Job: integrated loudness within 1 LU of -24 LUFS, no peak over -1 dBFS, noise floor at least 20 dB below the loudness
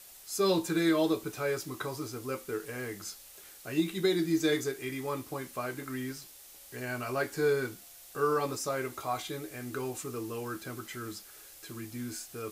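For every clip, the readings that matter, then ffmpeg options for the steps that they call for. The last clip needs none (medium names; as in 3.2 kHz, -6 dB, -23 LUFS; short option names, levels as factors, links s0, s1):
noise floor -52 dBFS; noise floor target -53 dBFS; loudness -33.0 LUFS; peak level -15.0 dBFS; loudness target -24.0 LUFS
-> -af "afftdn=nr=6:nf=-52"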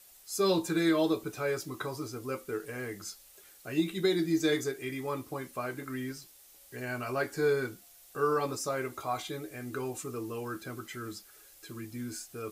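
noise floor -57 dBFS; loudness -33.0 LUFS; peak level -15.5 dBFS; loudness target -24.0 LUFS
-> -af "volume=2.82"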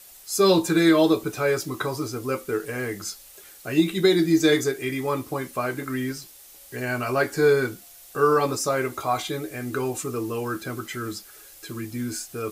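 loudness -24.0 LUFS; peak level -6.5 dBFS; noise floor -48 dBFS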